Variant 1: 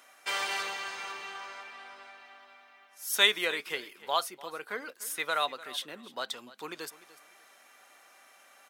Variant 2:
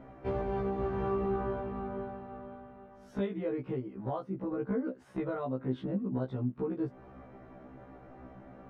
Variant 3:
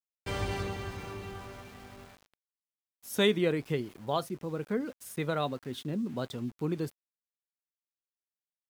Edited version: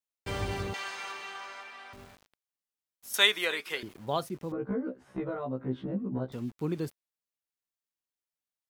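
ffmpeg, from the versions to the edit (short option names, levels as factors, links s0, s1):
-filter_complex "[0:a]asplit=2[s0][s1];[2:a]asplit=4[s2][s3][s4][s5];[s2]atrim=end=0.742[s6];[s0]atrim=start=0.738:end=1.932[s7];[s3]atrim=start=1.928:end=3.142[s8];[s1]atrim=start=3.138:end=3.832[s9];[s4]atrim=start=3.828:end=4.522[s10];[1:a]atrim=start=4.518:end=6.322[s11];[s5]atrim=start=6.318[s12];[s6][s7]acrossfade=d=0.004:c1=hsin:c2=hsin[s13];[s13][s8]acrossfade=d=0.004:c1=hsin:c2=hsin[s14];[s14][s9]acrossfade=d=0.004:c1=hsin:c2=hsin[s15];[s15][s10]acrossfade=d=0.004:c1=hsin:c2=hsin[s16];[s16][s11]acrossfade=d=0.004:c1=hsin:c2=hsin[s17];[s17][s12]acrossfade=d=0.004:c1=hsin:c2=hsin"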